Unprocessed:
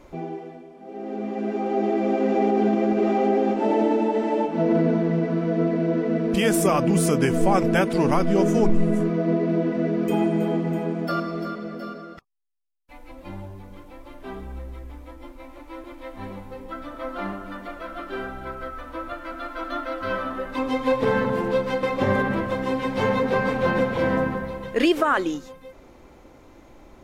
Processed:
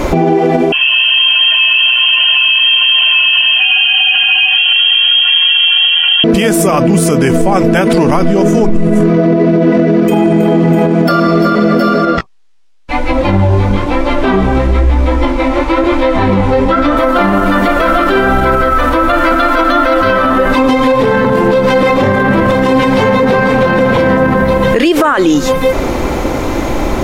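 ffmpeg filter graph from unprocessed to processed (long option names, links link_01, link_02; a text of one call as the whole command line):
ffmpeg -i in.wav -filter_complex "[0:a]asettb=1/sr,asplit=3[link_01][link_02][link_03];[link_01]atrim=end=0.724[link_04];[link_02]atrim=start=0.72:end=6.24,asetpts=PTS-STARTPTS,afade=type=in:duration=0.004:curve=qsin,afade=type=out:start_time=5.516:duration=0.004:curve=qsin,aecho=1:1:1.2:0.78,atrim=end_sample=243432,lowpass=frequency=2900:width_type=q:width=0.5098,lowpass=frequency=2900:width_type=q:width=0.6013,lowpass=frequency=2900:width_type=q:width=0.9,lowpass=frequency=2900:width_type=q:width=2.563,afreqshift=-3400[link_05];[link_03]atrim=start=6.236[link_06];[link_04][link_05]acrossfade=duration=0.004:curve1=hsin:curve2=qsin[link_07];[link_07][link_06]acrossfade=duration=0.004:curve1=qsin:curve2=hsin,asettb=1/sr,asplit=3[link_08][link_09][link_10];[link_08]atrim=end=12.054[link_11];[link_09]atrim=start=12.05:end=16.97,asetpts=PTS-STARTPTS,afade=type=in:duration=0.004:curve=qsin,afade=type=out:start_time=4.916:duration=0.004:curve=qsin,lowpass=5700,flanger=delay=15.5:depth=7.3:speed=1[link_12];[link_10]atrim=start=16.966[link_13];[link_11][link_12]acrossfade=duration=0.004:curve1=hsin:curve2=qsin[link_14];[link_14][link_13]acrossfade=duration=0.004:curve1=qsin:curve2=hsin,acompressor=threshold=-36dB:ratio=4,alimiter=level_in=35.5dB:limit=-1dB:release=50:level=0:latency=1,volume=-1dB" out.wav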